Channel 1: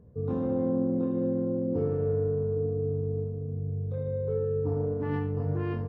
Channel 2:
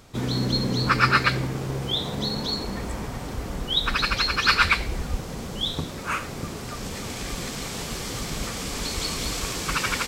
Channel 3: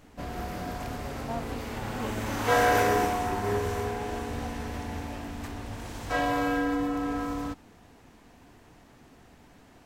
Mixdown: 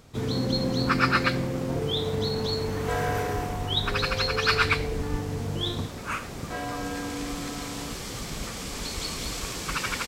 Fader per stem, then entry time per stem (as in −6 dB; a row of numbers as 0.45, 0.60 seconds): −2.5, −4.0, −7.0 decibels; 0.00, 0.00, 0.40 seconds